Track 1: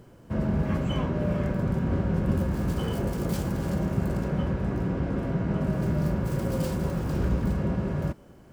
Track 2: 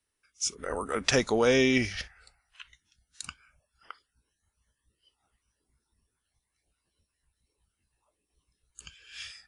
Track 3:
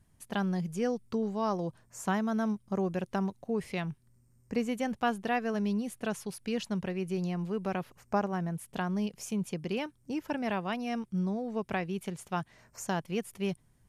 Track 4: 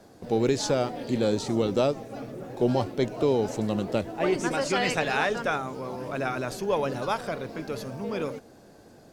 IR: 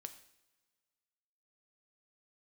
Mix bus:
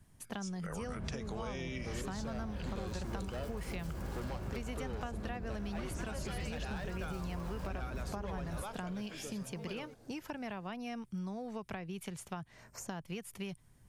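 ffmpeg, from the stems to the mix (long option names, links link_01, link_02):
-filter_complex "[0:a]asubboost=boost=5.5:cutoff=56,adelay=500,volume=-7dB[link_01];[1:a]volume=-3dB[link_02];[2:a]volume=3dB[link_03];[3:a]asoftclip=type=hard:threshold=-22dB,adelay=1550,volume=-8.5dB[link_04];[link_01][link_02][link_03]amix=inputs=3:normalize=0,acompressor=threshold=-29dB:ratio=3,volume=0dB[link_05];[link_04][link_05]amix=inputs=2:normalize=0,acrossover=split=120|810[link_06][link_07][link_08];[link_06]acompressor=threshold=-40dB:ratio=4[link_09];[link_07]acompressor=threshold=-44dB:ratio=4[link_10];[link_08]acompressor=threshold=-46dB:ratio=4[link_11];[link_09][link_10][link_11]amix=inputs=3:normalize=0"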